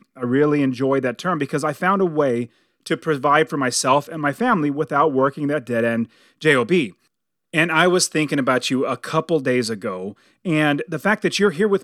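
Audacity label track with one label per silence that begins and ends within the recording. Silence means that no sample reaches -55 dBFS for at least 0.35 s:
7.070000	7.530000	silence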